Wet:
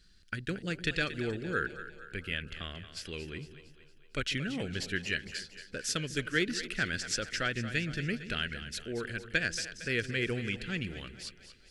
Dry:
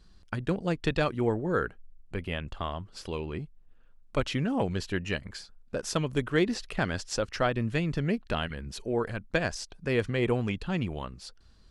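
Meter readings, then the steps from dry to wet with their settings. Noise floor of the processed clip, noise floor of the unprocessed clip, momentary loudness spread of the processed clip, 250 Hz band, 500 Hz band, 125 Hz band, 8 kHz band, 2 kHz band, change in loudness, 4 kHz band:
−58 dBFS, −56 dBFS, 11 LU, −6.5 dB, −8.5 dB, −6.5 dB, +2.5 dB, +2.0 dB, −3.5 dB, +2.5 dB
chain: drawn EQ curve 420 Hz 0 dB, 990 Hz −14 dB, 1,500 Hz +9 dB
on a send: echo with a time of its own for lows and highs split 400 Hz, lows 147 ms, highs 229 ms, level −12 dB
on the sum: level −7 dB

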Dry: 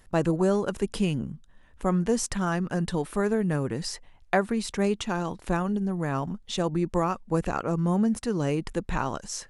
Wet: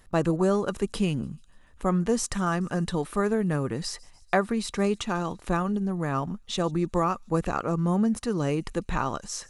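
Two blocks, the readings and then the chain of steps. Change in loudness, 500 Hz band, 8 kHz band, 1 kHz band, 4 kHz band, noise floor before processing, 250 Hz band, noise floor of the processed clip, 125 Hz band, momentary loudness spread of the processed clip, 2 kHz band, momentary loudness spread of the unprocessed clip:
0.0 dB, 0.0 dB, 0.0 dB, +1.5 dB, +0.5 dB, −55 dBFS, 0.0 dB, −55 dBFS, 0.0 dB, 6 LU, 0.0 dB, 7 LU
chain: hollow resonant body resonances 1,200/3,900 Hz, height 8 dB
on a send: delay with a high-pass on its return 146 ms, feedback 64%, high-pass 5,100 Hz, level −21 dB

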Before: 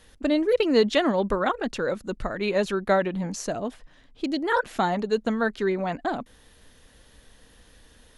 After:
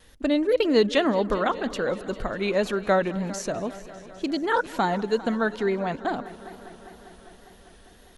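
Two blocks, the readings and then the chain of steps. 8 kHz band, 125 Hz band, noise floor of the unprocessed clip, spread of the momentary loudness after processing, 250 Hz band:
0.0 dB, 0.0 dB, −56 dBFS, 16 LU, 0.0 dB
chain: echo machine with several playback heads 200 ms, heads first and second, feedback 69%, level −20.5 dB
tape wow and flutter 46 cents

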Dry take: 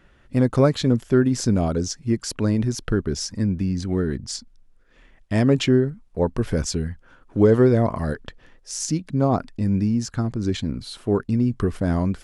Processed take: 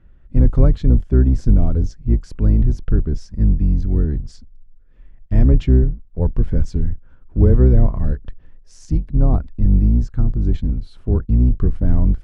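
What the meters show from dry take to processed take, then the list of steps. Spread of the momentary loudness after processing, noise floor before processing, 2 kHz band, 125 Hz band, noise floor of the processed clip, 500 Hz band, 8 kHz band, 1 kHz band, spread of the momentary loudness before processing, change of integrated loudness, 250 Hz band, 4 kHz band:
9 LU, −55 dBFS, below −10 dB, +6.5 dB, −46 dBFS, −5.0 dB, below −15 dB, −8.0 dB, 10 LU, +4.0 dB, −1.0 dB, below −15 dB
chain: sub-octave generator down 2 octaves, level 0 dB
RIAA equalisation playback
level −8.5 dB

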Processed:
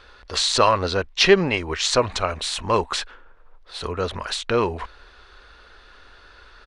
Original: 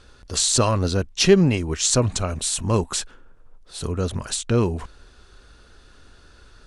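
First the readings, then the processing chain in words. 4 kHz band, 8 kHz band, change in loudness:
+3.0 dB, −7.5 dB, 0.0 dB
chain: graphic EQ with 10 bands 125 Hz −9 dB, 250 Hz −4 dB, 500 Hz +4 dB, 1,000 Hz +7 dB, 2,000 Hz +8 dB, 4,000 Hz +6 dB, 8,000 Hz −10 dB
downsampling to 22,050 Hz
level −1.5 dB

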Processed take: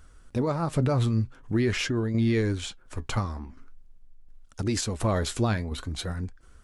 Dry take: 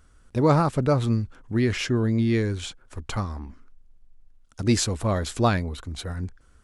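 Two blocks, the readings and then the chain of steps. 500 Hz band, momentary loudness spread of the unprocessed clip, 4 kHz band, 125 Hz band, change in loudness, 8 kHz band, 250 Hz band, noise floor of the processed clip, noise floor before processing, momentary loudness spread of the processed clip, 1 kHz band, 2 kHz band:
−4.0 dB, 13 LU, −1.5 dB, −2.0 dB, −3.0 dB, −3.0 dB, −3.0 dB, −53 dBFS, −57 dBFS, 11 LU, −6.0 dB, −1.5 dB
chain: brickwall limiter −18.5 dBFS, peak gain reduction 10 dB
flanger 0.45 Hz, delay 1.1 ms, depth 8.4 ms, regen +71%
shaped tremolo saw down 1.4 Hz, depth 50%
level +7.5 dB

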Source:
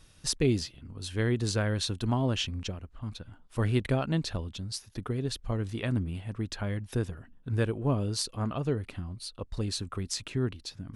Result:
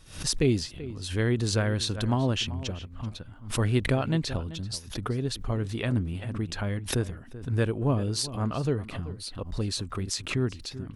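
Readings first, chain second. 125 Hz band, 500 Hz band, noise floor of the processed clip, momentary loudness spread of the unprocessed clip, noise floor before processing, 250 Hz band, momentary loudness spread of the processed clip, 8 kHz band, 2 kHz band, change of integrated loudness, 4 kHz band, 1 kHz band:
+2.5 dB, +2.5 dB, −45 dBFS, 11 LU, −57 dBFS, +2.5 dB, 11 LU, +3.0 dB, +3.5 dB, +2.5 dB, +2.5 dB, +2.5 dB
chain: slap from a distant wall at 66 metres, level −15 dB
background raised ahead of every attack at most 120 dB per second
level +2 dB

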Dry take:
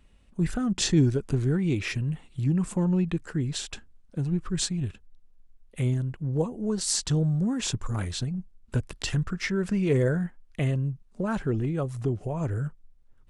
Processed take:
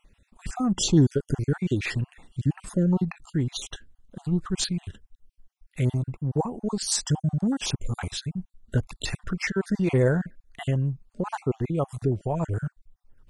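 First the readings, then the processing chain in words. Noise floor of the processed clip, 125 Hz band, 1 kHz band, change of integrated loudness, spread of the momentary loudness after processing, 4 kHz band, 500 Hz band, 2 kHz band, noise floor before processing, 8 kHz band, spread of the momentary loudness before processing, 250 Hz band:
−77 dBFS, 0.0 dB, +4.5 dB, +1.0 dB, 12 LU, +1.0 dB, +1.5 dB, +1.5 dB, −57 dBFS, +0.5 dB, 9 LU, +0.5 dB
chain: time-frequency cells dropped at random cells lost 39%
dynamic equaliser 820 Hz, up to +7 dB, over −51 dBFS, Q 2.1
level +2.5 dB

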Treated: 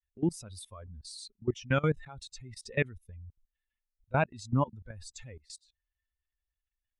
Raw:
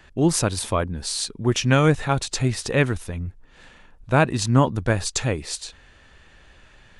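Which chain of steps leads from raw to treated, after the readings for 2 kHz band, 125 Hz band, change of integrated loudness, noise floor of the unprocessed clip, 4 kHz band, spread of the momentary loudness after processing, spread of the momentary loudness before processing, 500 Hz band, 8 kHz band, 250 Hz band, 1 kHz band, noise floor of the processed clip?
−10.5 dB, −12.5 dB, −10.5 dB, −52 dBFS, −18.0 dB, 19 LU, 13 LU, −11.5 dB, −20.5 dB, −12.0 dB, −11.5 dB, below −85 dBFS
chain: spectral dynamics exaggerated over time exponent 2
output level in coarse steps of 21 dB
level −3.5 dB

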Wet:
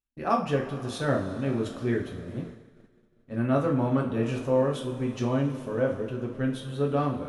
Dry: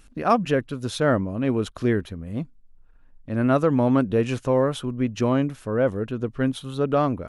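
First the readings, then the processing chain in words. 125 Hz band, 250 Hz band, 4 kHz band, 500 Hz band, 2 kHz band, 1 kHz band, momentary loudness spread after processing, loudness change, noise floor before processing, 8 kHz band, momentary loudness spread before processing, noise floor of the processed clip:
−3.0 dB, −5.0 dB, −5.5 dB, −4.5 dB, −5.0 dB, −5.0 dB, 8 LU, −4.5 dB, −52 dBFS, can't be measured, 10 LU, −63 dBFS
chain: coupled-rooms reverb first 0.37 s, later 4.7 s, from −18 dB, DRR −1.5 dB
downward expander −28 dBFS
level −9 dB

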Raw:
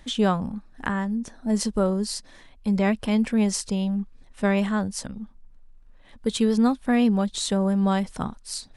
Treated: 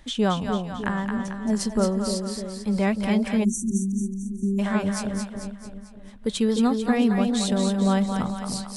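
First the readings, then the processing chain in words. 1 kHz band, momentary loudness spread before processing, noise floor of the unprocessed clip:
0.0 dB, 12 LU, −52 dBFS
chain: echo with a time of its own for lows and highs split 610 Hz, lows 301 ms, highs 222 ms, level −5 dB
time-frequency box erased 0:03.44–0:04.59, 390–5,700 Hz
level −1 dB
AAC 128 kbit/s 48,000 Hz

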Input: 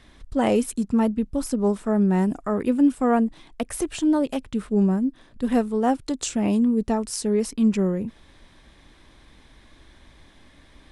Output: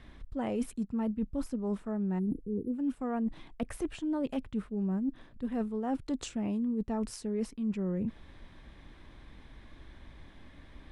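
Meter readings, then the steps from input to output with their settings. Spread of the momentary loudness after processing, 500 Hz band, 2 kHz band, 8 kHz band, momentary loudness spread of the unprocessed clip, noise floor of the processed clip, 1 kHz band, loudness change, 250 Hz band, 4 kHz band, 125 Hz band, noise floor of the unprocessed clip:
8 LU, −13.0 dB, −12.5 dB, −16.0 dB, 8 LU, −55 dBFS, −14.0 dB, −11.0 dB, −10.5 dB, −12.5 dB, −10.0 dB, −53 dBFS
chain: time-frequency box erased 0:02.19–0:02.73, 500–9,400 Hz
bass and treble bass +4 dB, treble −10 dB
reversed playback
downward compressor 10 to 1, threshold −27 dBFS, peak gain reduction 15 dB
reversed playback
level −2.5 dB

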